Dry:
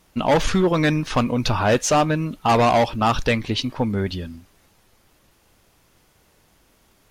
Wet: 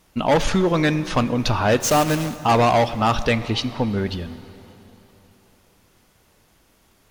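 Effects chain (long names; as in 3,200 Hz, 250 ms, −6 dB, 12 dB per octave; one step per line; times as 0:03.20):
0:01.80–0:02.44: one scale factor per block 3 bits
dense smooth reverb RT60 3.5 s, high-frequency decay 0.85×, DRR 13.5 dB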